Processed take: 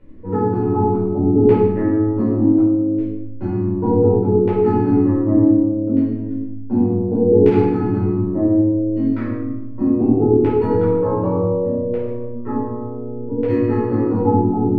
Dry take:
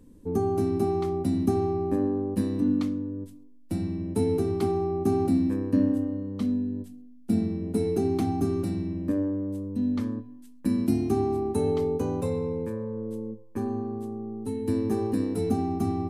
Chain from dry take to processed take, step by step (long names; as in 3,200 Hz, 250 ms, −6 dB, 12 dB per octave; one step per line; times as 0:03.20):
wrong playback speed 44.1 kHz file played as 48 kHz
auto-filter low-pass saw down 0.67 Hz 440–2,400 Hz
rectangular room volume 390 cubic metres, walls mixed, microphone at 4.7 metres
level −4 dB